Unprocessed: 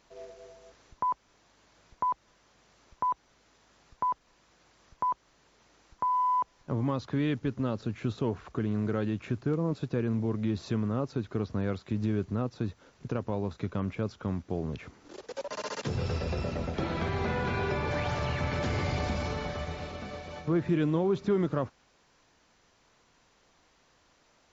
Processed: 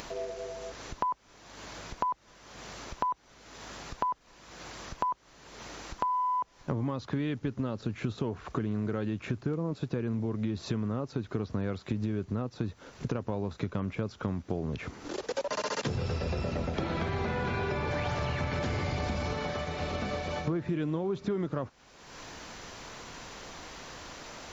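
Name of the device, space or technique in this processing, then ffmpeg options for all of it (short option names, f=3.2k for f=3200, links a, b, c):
upward and downward compression: -filter_complex "[0:a]acompressor=mode=upward:threshold=-42dB:ratio=2.5,acompressor=threshold=-38dB:ratio=6,asettb=1/sr,asplit=3[a][b][c];[a]atrim=end=19.334[d];[b]atrim=start=19.33:end=19.81,asetpts=PTS-STARTPTS,afade=t=in:d=0.004:c=qsin,afade=t=out:st=0.476:d=0.004:c=qsin,highpass=f=120:p=1[e];[c]atrim=start=19.806[f];[d][e]acrossfade=d=0.004:c1=hsin:c2=qsin[g];[g][f]acrossfade=d=0.004:c1=qsin:c2=hsin,volume=9dB"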